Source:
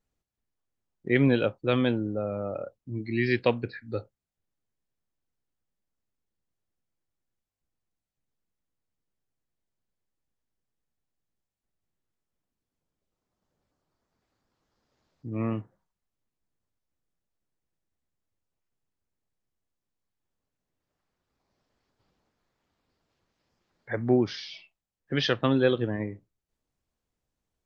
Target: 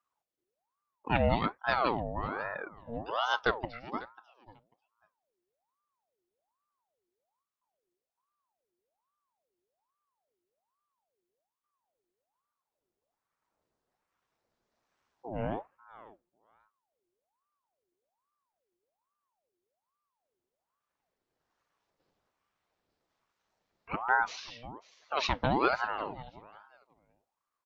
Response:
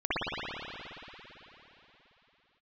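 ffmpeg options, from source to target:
-af "aecho=1:1:543|1086:0.119|0.0178,aeval=exprs='val(0)*sin(2*PI*770*n/s+770*0.55/1.2*sin(2*PI*1.2*n/s))':c=same,volume=0.794"

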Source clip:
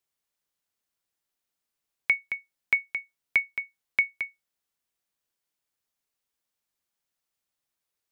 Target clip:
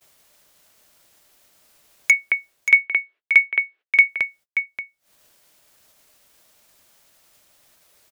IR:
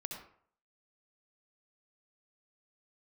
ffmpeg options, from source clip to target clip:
-filter_complex "[0:a]equalizer=f=610:t=o:w=0.22:g=8,asplit=2[s0][s1];[s1]acompressor=mode=upward:threshold=0.0562:ratio=2.5,volume=1.12[s2];[s0][s2]amix=inputs=2:normalize=0,aeval=exprs='0.376*(abs(mod(val(0)/0.376+3,4)-2)-1)':c=same,asettb=1/sr,asplit=3[s3][s4][s5];[s3]atrim=end=2.124[s6];[s4]atrim=start=2.12:end=4.08,asetpts=PTS-STARTPTS,afade=t=in:d=0.004:c=qsin,afade=t=out:st=1.956:d=0.004:c=qsin,highpass=f=340:w=0.5412,highpass=f=340:w=1.3066,equalizer=f=370:t=q:w=4:g=9,equalizer=f=600:t=q:w=4:g=-3,equalizer=f=890:t=q:w=4:g=-4,equalizer=f=1700:t=q:w=4:g=4,equalizer=f=2600:t=q:w=4:g=4,lowpass=f=3200:w=0.5412,lowpass=f=3200:w=1.3066[s7];[s5]atrim=start=4.076[s8];[s6][s7]acrossfade=d=0.004:c1=hsin:c2=qsin[s9];[s9][s8]acrossfade=d=0.004:c1=qsin:c2=hsin,agate=range=0.0112:threshold=0.00398:ratio=16:detection=peak,aecho=1:1:580:0.355,volume=1.33"

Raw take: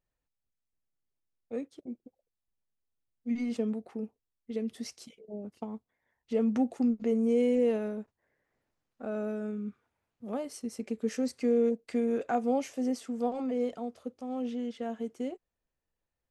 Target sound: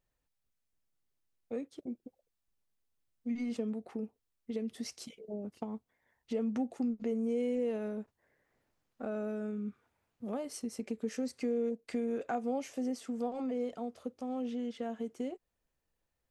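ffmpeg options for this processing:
-af "acompressor=threshold=0.00891:ratio=2,volume=1.41"

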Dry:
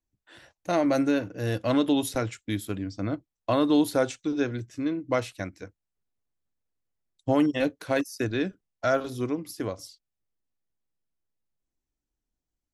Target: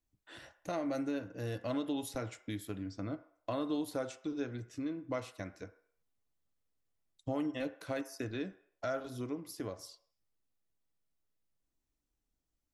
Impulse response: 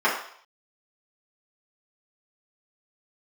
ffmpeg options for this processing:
-filter_complex "[0:a]acompressor=threshold=0.00562:ratio=2,asplit=2[s0][s1];[1:a]atrim=start_sample=2205[s2];[s1][s2]afir=irnorm=-1:irlink=0,volume=0.0473[s3];[s0][s3]amix=inputs=2:normalize=0"

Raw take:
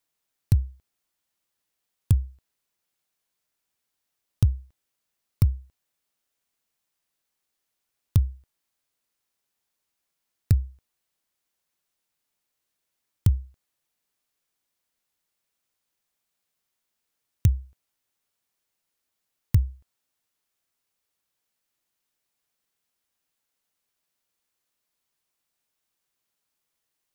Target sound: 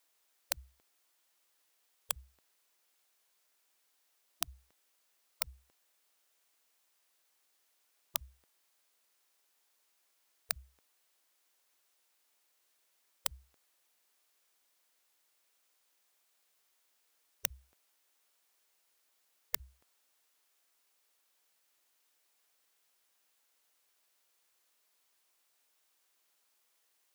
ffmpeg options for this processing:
-af "highpass=390,afftfilt=real='re*lt(hypot(re,im),0.0282)':imag='im*lt(hypot(re,im),0.0282)':win_size=1024:overlap=0.75,volume=2"

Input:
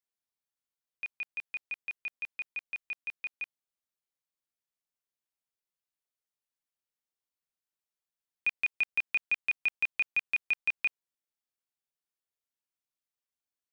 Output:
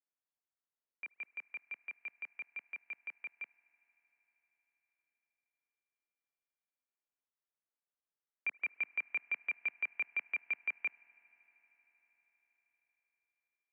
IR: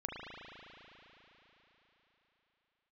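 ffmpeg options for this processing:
-filter_complex "[0:a]asplit=2[s0][s1];[1:a]atrim=start_sample=2205,asetrate=33075,aresample=44100[s2];[s1][s2]afir=irnorm=-1:irlink=0,volume=0.0794[s3];[s0][s3]amix=inputs=2:normalize=0,highpass=f=170:t=q:w=0.5412,highpass=f=170:t=q:w=1.307,lowpass=f=3300:t=q:w=0.5176,lowpass=f=3300:t=q:w=0.7071,lowpass=f=3300:t=q:w=1.932,afreqshift=-88,acrossover=split=210 2500:gain=0.0708 1 0.158[s4][s5][s6];[s4][s5][s6]amix=inputs=3:normalize=0,volume=0.668"

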